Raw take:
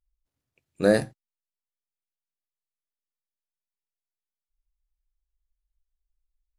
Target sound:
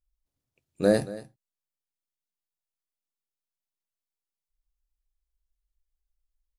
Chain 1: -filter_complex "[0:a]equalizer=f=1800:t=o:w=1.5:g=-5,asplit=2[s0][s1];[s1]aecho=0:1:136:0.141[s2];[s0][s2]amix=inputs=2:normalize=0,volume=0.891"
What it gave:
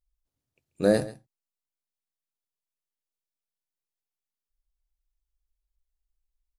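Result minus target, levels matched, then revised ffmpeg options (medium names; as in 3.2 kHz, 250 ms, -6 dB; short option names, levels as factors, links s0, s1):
echo 93 ms early
-filter_complex "[0:a]equalizer=f=1800:t=o:w=1.5:g=-5,asplit=2[s0][s1];[s1]aecho=0:1:229:0.141[s2];[s0][s2]amix=inputs=2:normalize=0,volume=0.891"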